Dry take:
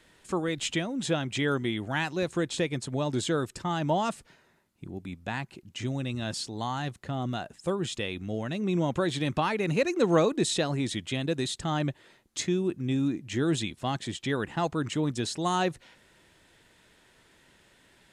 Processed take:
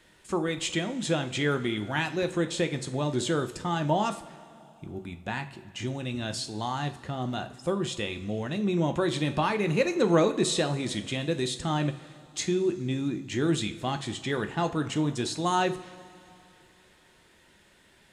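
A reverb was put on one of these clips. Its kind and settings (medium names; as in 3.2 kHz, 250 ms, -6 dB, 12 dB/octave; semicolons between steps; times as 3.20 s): two-slope reverb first 0.35 s, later 3 s, from -18 dB, DRR 6.5 dB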